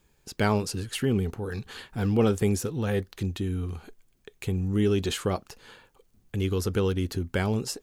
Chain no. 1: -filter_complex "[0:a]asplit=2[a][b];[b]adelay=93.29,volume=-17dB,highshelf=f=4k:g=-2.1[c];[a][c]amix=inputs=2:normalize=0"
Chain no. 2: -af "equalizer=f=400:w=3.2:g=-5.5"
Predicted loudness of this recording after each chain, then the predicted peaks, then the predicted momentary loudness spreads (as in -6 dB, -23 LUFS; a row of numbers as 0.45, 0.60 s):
-28.0, -29.0 LUFS; -11.5, -12.0 dBFS; 13, 12 LU